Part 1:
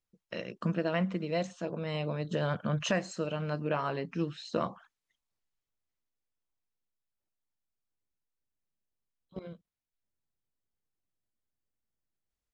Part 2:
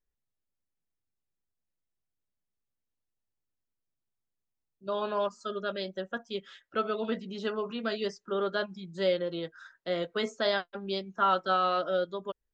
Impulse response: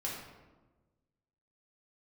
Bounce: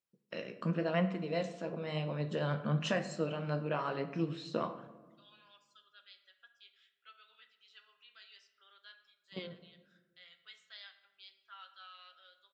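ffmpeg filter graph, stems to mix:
-filter_complex "[0:a]flanger=delay=5.5:depth=8.8:regen=66:speed=0.96:shape=sinusoidal,volume=-1dB,asplit=3[a][b][c];[b]volume=-8.5dB[d];[1:a]highpass=f=2.3k:t=q:w=1.5,adelay=300,volume=-13dB,asplit=2[e][f];[f]volume=-15.5dB[g];[c]apad=whole_len=565981[h];[e][h]sidechaingate=range=-9dB:threshold=-48dB:ratio=16:detection=peak[i];[2:a]atrim=start_sample=2205[j];[d][g]amix=inputs=2:normalize=0[k];[k][j]afir=irnorm=-1:irlink=0[l];[a][i][l]amix=inputs=3:normalize=0,highpass=130,bandreject=f=6.4k:w=11"

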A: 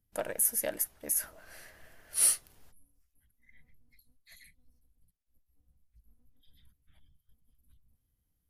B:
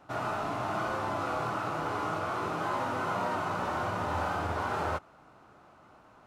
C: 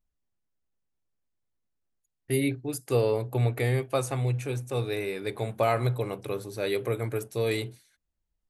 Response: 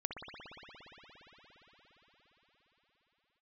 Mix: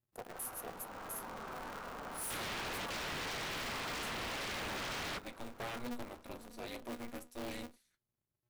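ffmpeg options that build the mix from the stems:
-filter_complex "[0:a]highpass=120,equalizer=f=4k:w=0.34:g=-6.5,volume=-11.5dB[a];[1:a]dynaudnorm=f=110:g=17:m=5dB,adelay=200,volume=-5.5dB[b];[2:a]equalizer=f=350:t=o:w=0.37:g=-11,flanger=delay=7.8:depth=1.8:regen=74:speed=0.7:shape=sinusoidal,volume=-8.5dB,asplit=2[c][d];[d]apad=whole_len=285285[e];[b][e]sidechaingate=range=-12dB:threshold=-55dB:ratio=16:detection=peak[f];[a][f][c]amix=inputs=3:normalize=0,aeval=exprs='0.0168*(abs(mod(val(0)/0.0168+3,4)-2)-1)':c=same,aeval=exprs='val(0)*sgn(sin(2*PI*120*n/s))':c=same"

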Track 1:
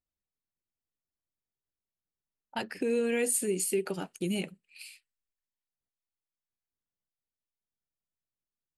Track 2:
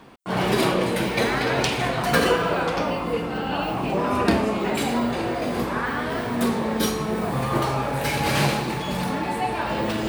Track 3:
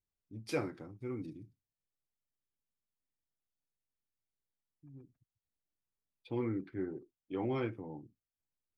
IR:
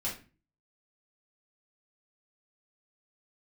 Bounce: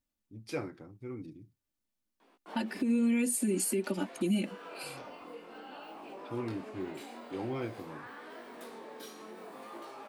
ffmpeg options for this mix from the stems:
-filter_complex "[0:a]equalizer=f=220:t=o:w=0.73:g=11,aecho=1:1:3.4:0.9,volume=0dB,asplit=2[a][b];[1:a]flanger=delay=17.5:depth=7.4:speed=0.52,highpass=f=260:w=0.5412,highpass=f=260:w=1.3066,acompressor=threshold=-32dB:ratio=2.5,adelay=2200,volume=-13.5dB[c];[2:a]volume=-1.5dB[d];[b]apad=whole_len=541944[e];[c][e]sidechaincompress=threshold=-33dB:ratio=8:attack=28:release=108[f];[a][f][d]amix=inputs=3:normalize=0,alimiter=limit=-21.5dB:level=0:latency=1:release=316"

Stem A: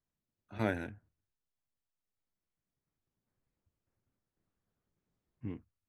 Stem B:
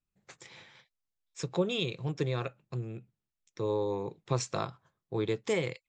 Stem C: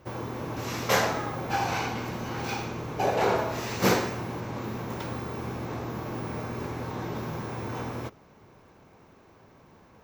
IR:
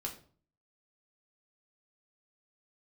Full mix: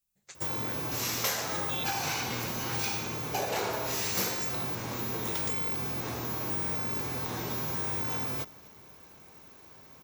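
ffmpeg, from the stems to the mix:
-filter_complex "[0:a]volume=-12.5dB[a];[1:a]acompressor=threshold=-33dB:ratio=6,volume=-5.5dB[b];[2:a]adelay=350,volume=-3dB,asplit=2[c][d];[d]volume=-23.5dB,aecho=0:1:250:1[e];[a][b][c][e]amix=inputs=4:normalize=0,crystalizer=i=5:c=0,acompressor=threshold=-28dB:ratio=6"

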